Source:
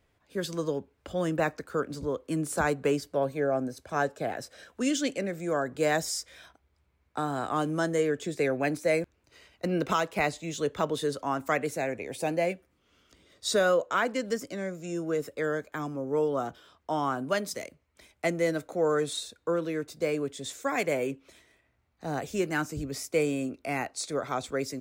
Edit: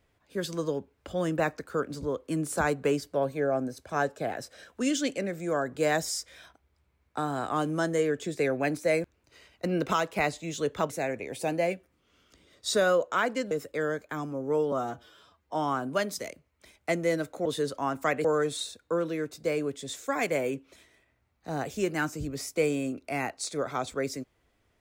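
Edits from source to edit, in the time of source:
0:10.90–0:11.69: move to 0:18.81
0:14.30–0:15.14: remove
0:16.35–0:16.90: time-stretch 1.5×

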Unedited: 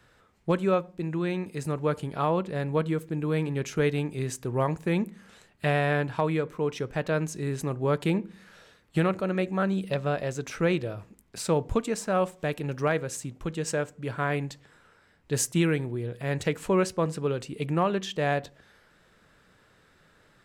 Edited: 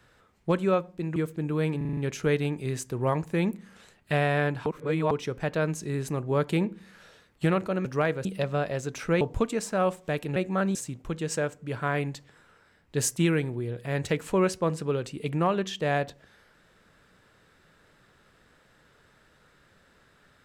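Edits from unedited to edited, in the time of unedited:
0:01.16–0:02.89: remove
0:03.50: stutter 0.04 s, 6 plays
0:06.19–0:06.64: reverse
0:09.38–0:09.77: swap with 0:12.71–0:13.11
0:10.73–0:11.56: remove

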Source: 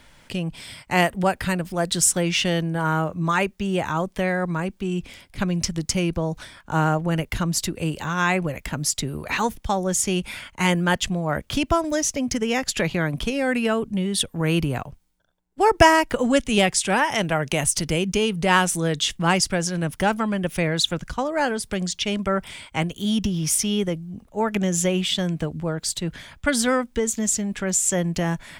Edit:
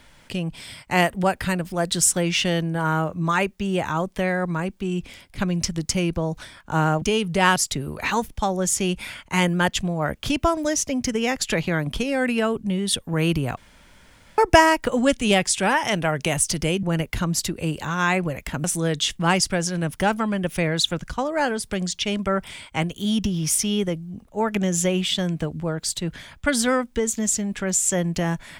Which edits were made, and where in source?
0:07.02–0:08.83: swap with 0:18.10–0:18.64
0:14.84–0:15.65: fill with room tone

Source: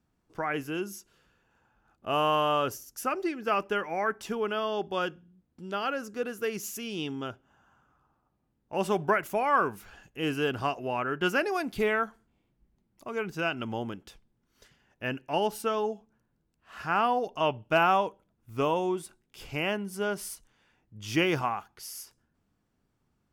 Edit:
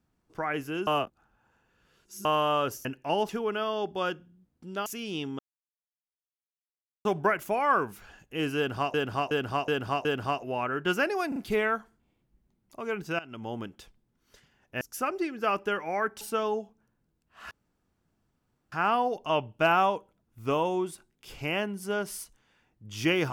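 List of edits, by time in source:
0:00.87–0:02.25: reverse
0:02.85–0:04.25: swap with 0:15.09–0:15.53
0:05.82–0:06.70: remove
0:07.23–0:08.89: silence
0:10.41–0:10.78: repeat, 5 plays
0:11.64: stutter 0.04 s, 3 plays
0:13.47–0:13.91: fade in, from −17 dB
0:16.83: splice in room tone 1.21 s

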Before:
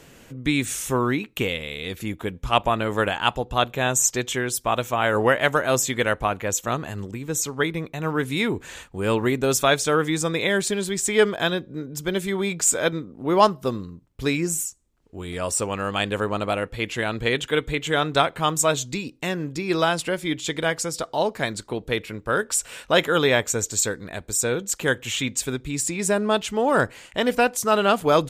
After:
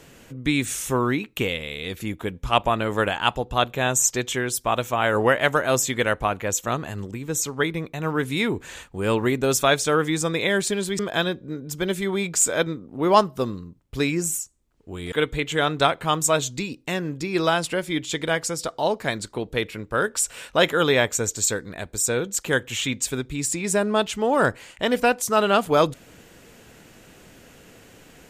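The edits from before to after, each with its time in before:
0:10.99–0:11.25: remove
0:15.38–0:17.47: remove

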